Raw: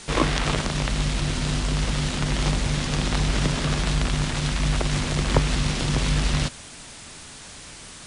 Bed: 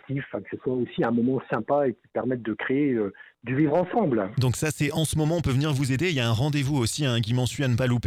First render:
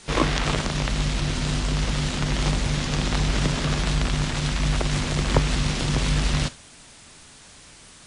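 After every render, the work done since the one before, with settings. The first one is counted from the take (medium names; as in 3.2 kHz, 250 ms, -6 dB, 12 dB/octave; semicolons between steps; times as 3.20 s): noise print and reduce 6 dB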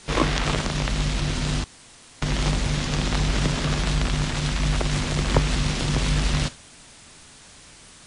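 1.64–2.22 s: room tone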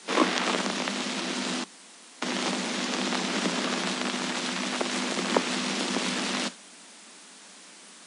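Chebyshev high-pass 180 Hz, order 8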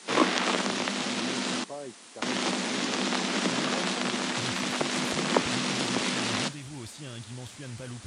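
add bed -17 dB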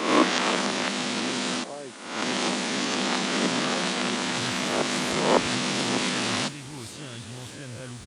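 reverse spectral sustain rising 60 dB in 0.79 s; delay 1079 ms -21.5 dB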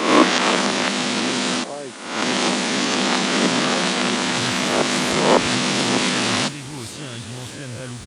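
trim +6.5 dB; peak limiter -1 dBFS, peak gain reduction 2.5 dB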